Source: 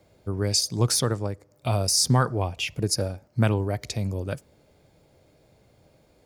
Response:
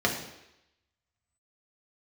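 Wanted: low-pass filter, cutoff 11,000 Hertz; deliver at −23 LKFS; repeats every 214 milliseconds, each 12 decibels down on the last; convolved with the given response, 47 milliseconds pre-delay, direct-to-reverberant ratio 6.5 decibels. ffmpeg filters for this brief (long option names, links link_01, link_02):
-filter_complex "[0:a]lowpass=11000,aecho=1:1:214|428|642:0.251|0.0628|0.0157,asplit=2[link_01][link_02];[1:a]atrim=start_sample=2205,adelay=47[link_03];[link_02][link_03]afir=irnorm=-1:irlink=0,volume=-19dB[link_04];[link_01][link_04]amix=inputs=2:normalize=0,volume=1dB"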